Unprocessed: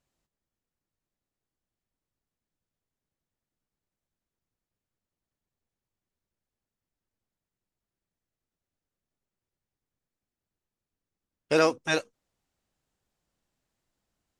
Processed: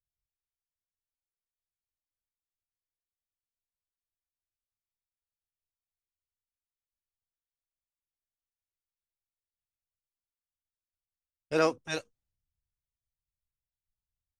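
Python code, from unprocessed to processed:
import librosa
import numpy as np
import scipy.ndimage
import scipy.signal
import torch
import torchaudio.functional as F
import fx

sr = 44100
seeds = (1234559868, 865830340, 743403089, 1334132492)

y = fx.band_widen(x, sr, depth_pct=100)
y = F.gain(torch.from_numpy(y), -8.0).numpy()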